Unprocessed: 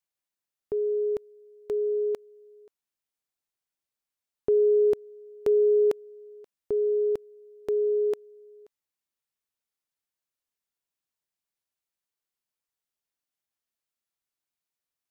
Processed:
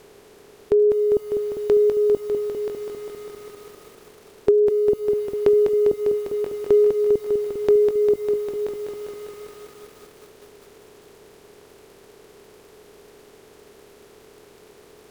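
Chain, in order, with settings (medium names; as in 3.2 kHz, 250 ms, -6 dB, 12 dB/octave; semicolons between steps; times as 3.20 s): spectral levelling over time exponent 0.4; low-pass that closes with the level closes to 400 Hz, closed at -19 dBFS; bit-crushed delay 200 ms, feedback 80%, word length 9-bit, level -5.5 dB; trim +7.5 dB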